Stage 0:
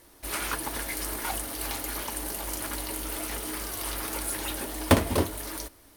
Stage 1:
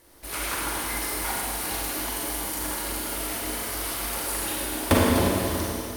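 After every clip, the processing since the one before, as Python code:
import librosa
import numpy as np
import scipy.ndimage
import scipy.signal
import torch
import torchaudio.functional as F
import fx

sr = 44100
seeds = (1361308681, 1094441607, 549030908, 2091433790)

y = fx.rev_schroeder(x, sr, rt60_s=2.7, comb_ms=33, drr_db=-4.5)
y = F.gain(torch.from_numpy(y), -2.0).numpy()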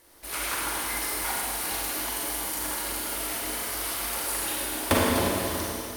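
y = fx.low_shelf(x, sr, hz=390.0, db=-6.5)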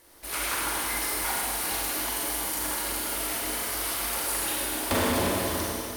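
y = np.clip(x, -10.0 ** (-22.5 / 20.0), 10.0 ** (-22.5 / 20.0))
y = F.gain(torch.from_numpy(y), 1.0).numpy()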